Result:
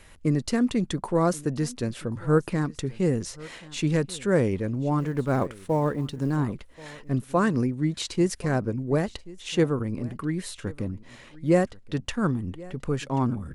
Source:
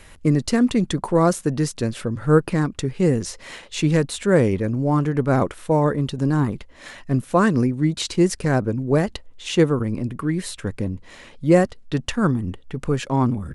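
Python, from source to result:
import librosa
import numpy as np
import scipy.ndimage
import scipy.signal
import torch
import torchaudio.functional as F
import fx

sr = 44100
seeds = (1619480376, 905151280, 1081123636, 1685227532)

y = fx.law_mismatch(x, sr, coded='A', at=(4.99, 6.36))
y = y + 10.0 ** (-21.0 / 20.0) * np.pad(y, (int(1083 * sr / 1000.0), 0))[:len(y)]
y = y * 10.0 ** (-5.5 / 20.0)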